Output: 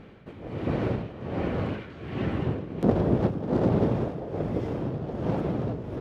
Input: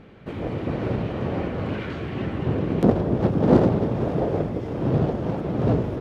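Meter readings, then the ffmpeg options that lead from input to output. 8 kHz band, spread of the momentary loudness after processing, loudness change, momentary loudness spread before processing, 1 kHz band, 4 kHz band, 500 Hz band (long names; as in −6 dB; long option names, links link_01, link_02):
can't be measured, 10 LU, −4.5 dB, 11 LU, −4.5 dB, −4.5 dB, −5.0 dB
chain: -af "tremolo=f=1.3:d=0.77"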